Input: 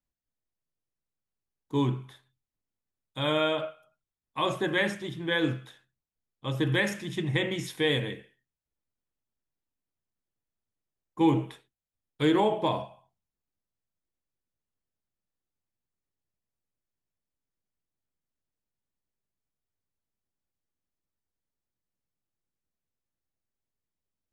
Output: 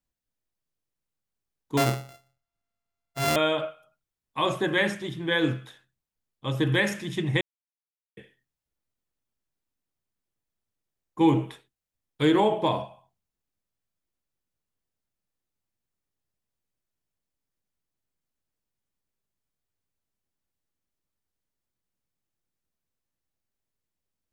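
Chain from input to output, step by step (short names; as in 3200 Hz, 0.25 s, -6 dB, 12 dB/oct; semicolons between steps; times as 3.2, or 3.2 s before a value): 1.77–3.36 sample sorter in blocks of 64 samples; 7.41–8.17 mute; gain +2.5 dB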